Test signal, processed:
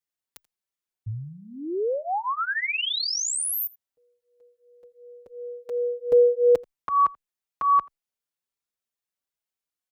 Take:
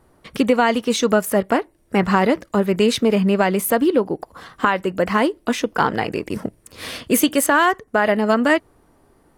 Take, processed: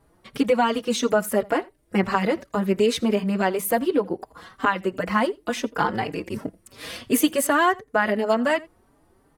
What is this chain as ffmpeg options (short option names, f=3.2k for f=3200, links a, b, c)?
-filter_complex "[0:a]asplit=2[a][b];[b]aecho=0:1:84:0.0631[c];[a][c]amix=inputs=2:normalize=0,asplit=2[d][e];[e]adelay=4.6,afreqshift=2.8[f];[d][f]amix=inputs=2:normalize=1,volume=-1.5dB"